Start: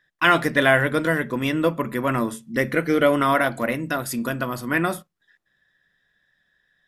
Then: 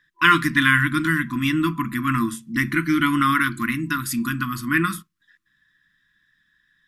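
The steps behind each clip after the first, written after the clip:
brick-wall band-stop 350–1,000 Hz
level +2.5 dB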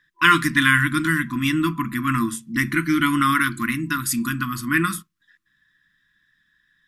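dynamic equaliser 8,300 Hz, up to +6 dB, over −40 dBFS, Q 0.86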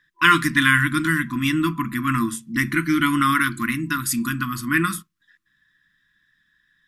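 no processing that can be heard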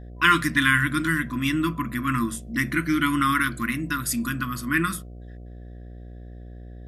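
hum with harmonics 60 Hz, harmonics 12, −37 dBFS −7 dB per octave
level −3 dB

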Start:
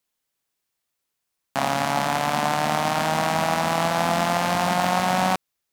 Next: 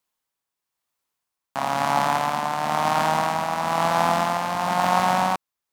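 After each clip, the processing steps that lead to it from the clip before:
parametric band 1,000 Hz +7 dB 0.84 octaves
amplitude tremolo 1 Hz, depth 46%
level −1.5 dB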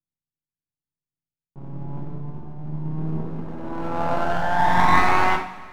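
low-pass filter sweep 150 Hz → 2,600 Hz, 0:02.88–0:05.70
half-wave rectification
coupled-rooms reverb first 0.4 s, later 2 s, from −16 dB, DRR −0.5 dB

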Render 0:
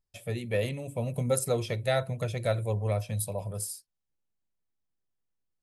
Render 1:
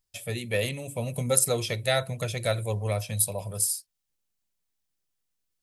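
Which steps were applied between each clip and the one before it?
high-shelf EQ 2,000 Hz +10.5 dB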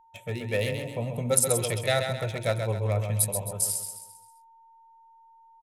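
adaptive Wiener filter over 9 samples
steady tone 910 Hz −56 dBFS
repeating echo 132 ms, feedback 43%, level −6.5 dB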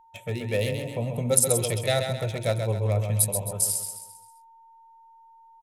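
dynamic equaliser 1,500 Hz, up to −6 dB, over −42 dBFS, Q 0.87
level +2.5 dB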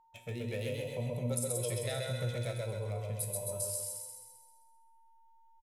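downward compressor 2.5 to 1, threshold −27 dBFS, peak gain reduction 9.5 dB
tuned comb filter 120 Hz, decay 1 s, harmonics all, mix 80%
on a send: repeating echo 130 ms, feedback 49%, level −4 dB
on the sum: level +2.5 dB

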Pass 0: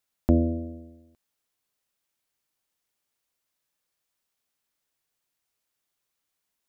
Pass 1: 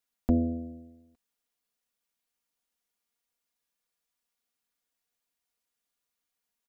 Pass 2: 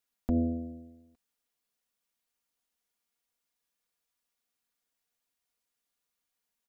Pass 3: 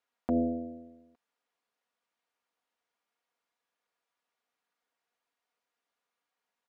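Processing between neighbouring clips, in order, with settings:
comb filter 4.2 ms, depth 62%; level −5.5 dB
brickwall limiter −18.5 dBFS, peak gain reduction 6 dB
resonant band-pass 890 Hz, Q 0.63; level +7 dB

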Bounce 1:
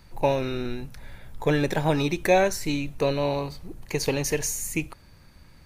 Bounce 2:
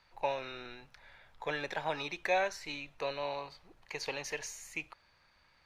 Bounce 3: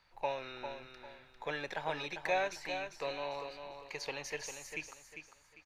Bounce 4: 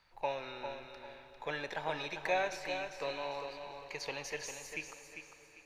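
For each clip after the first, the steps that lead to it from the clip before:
three-way crossover with the lows and the highs turned down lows −18 dB, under 590 Hz, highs −19 dB, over 5,300 Hz; level −6 dB
repeating echo 399 ms, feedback 30%, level −8 dB; level −2.5 dB
dense smooth reverb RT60 4.3 s, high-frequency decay 0.95×, DRR 11 dB

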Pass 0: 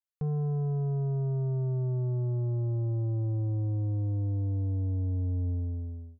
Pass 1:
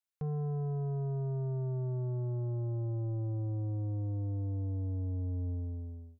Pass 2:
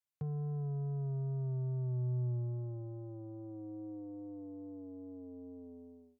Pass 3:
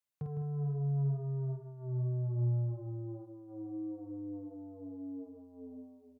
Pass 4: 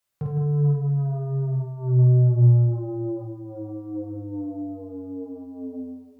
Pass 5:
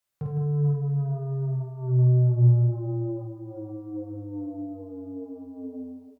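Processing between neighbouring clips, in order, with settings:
low-shelf EQ 430 Hz −5.5 dB
downward compressor, threshold −37 dBFS, peak gain reduction 4 dB; pitch vibrato 2.4 Hz 16 cents; high-pass filter sweep 100 Hz → 330 Hz, 0:01.86–0:04.05; level −3.5 dB
double-tracking delay 50 ms −4.5 dB; slap from a distant wall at 27 metres, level −7 dB
convolution reverb RT60 0.55 s, pre-delay 6 ms, DRR −1 dB; level +9 dB
single-tap delay 462 ms −16 dB; level −3 dB

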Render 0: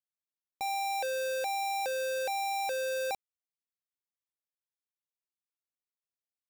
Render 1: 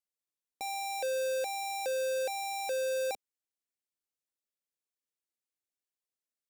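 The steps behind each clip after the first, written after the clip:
graphic EQ with 10 bands 125 Hz −11 dB, 250 Hz +5 dB, 500 Hz +5 dB, 1,000 Hz −6 dB, 8,000 Hz +4 dB
level −2.5 dB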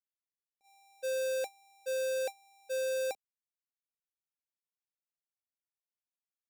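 noise gate −32 dBFS, range −44 dB
level +3.5 dB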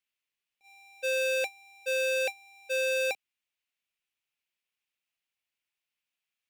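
parametric band 2,600 Hz +15 dB 1.1 octaves
level +2 dB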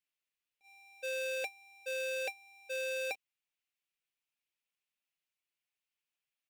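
comb filter 6.7 ms, depth 33%
level −5 dB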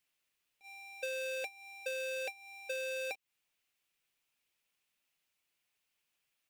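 downward compressor 6 to 1, threshold −46 dBFS, peak gain reduction 11.5 dB
level +8.5 dB

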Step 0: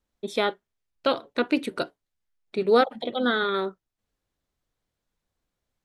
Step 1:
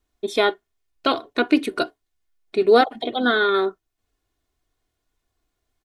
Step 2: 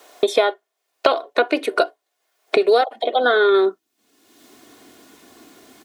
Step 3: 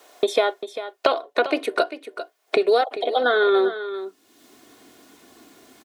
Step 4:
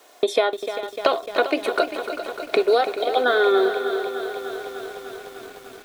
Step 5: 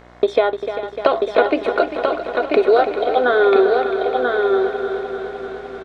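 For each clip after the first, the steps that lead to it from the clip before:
comb filter 2.8 ms, depth 58%; level +4 dB
high-pass filter sweep 560 Hz → 250 Hz, 0:03.26–0:03.79; multiband upward and downward compressor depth 100%
single-tap delay 396 ms −12 dB; level −3 dB
feedback echo at a low word length 300 ms, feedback 80%, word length 7 bits, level −10 dB
head-to-tape spacing loss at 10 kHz 26 dB; hum with harmonics 60 Hz, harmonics 37, −52 dBFS −3 dB per octave; single-tap delay 988 ms −4 dB; level +5.5 dB

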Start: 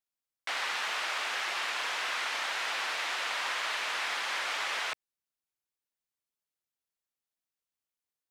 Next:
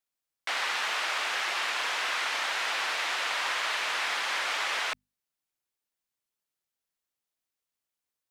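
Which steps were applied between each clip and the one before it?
mains-hum notches 50/100/150/200/250 Hz
level +3 dB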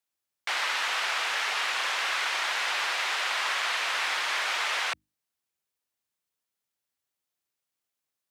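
frequency shifter +59 Hz
level +1.5 dB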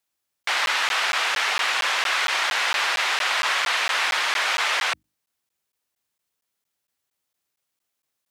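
regular buffer underruns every 0.23 s, samples 512, zero, from 0:00.43
level +6 dB

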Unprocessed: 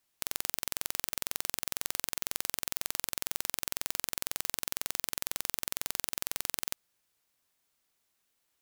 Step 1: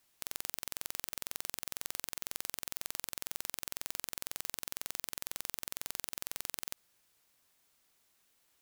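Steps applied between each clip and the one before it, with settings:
brickwall limiter −14.5 dBFS, peak gain reduction 10.5 dB
level +5 dB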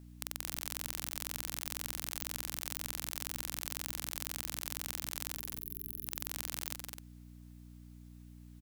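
gain on a spectral selection 0:05.36–0:06.05, 430–11,000 Hz −19 dB
loudspeakers that aren't time-aligned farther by 71 metres −7 dB, 89 metres −9 dB
hum with harmonics 60 Hz, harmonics 5, −53 dBFS −4 dB per octave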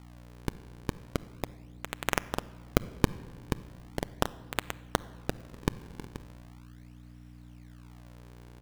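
sample-and-hold swept by an LFO 39×, swing 160% 0.38 Hz
rectangular room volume 1,900 cubic metres, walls mixed, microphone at 0.3 metres
level +3 dB

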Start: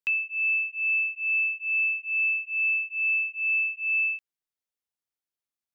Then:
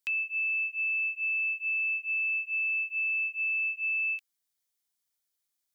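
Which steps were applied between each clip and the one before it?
brickwall limiter −26 dBFS, peak gain reduction 5.5 dB
high-shelf EQ 2,600 Hz +11.5 dB
notch filter 2,700 Hz, Q 11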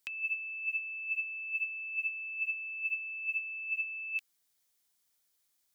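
compressor whose output falls as the input rises −35 dBFS, ratio −0.5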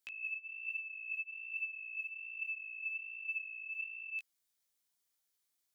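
chorus effect 1.2 Hz, delay 17 ms, depth 6 ms
level −3 dB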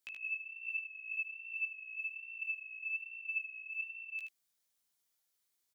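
single-tap delay 77 ms −5.5 dB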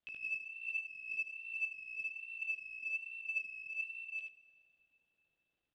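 running median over 41 samples
low-pass with resonance 3,300 Hz, resonance Q 3.3
dense smooth reverb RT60 3 s, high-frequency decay 0.8×, DRR 15.5 dB
level +4.5 dB

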